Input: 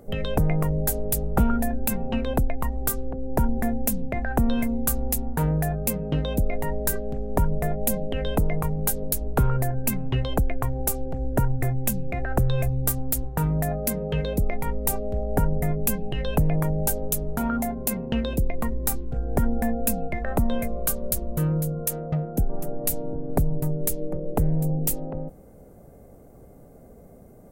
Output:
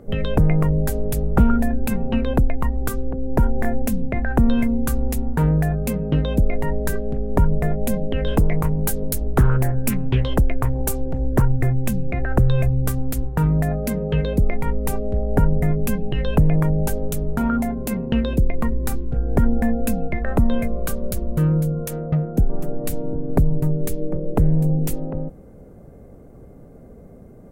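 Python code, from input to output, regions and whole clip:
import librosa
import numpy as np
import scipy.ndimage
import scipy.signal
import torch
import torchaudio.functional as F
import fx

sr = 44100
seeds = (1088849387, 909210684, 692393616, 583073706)

y = fx.chain(x, sr, fx.peak_eq(hz=190.0, db=-12.0, octaves=0.63),
    fx.doubler(ms=23.0, db=-4), at=(3.4, 3.82))
y = fx.chain(y, sr, fx.high_shelf(hz=7200.0, db=11.0),
    fx.doppler_dist(depth_ms=0.43), at=(8.27, 11.42))
y = fx.lowpass(y, sr, hz=2300.0, slope=6)
y = fx.peak_eq(y, sr, hz=720.0, db=-5.5, octaves=0.89)
y = y * 10.0 ** (6.0 / 20.0)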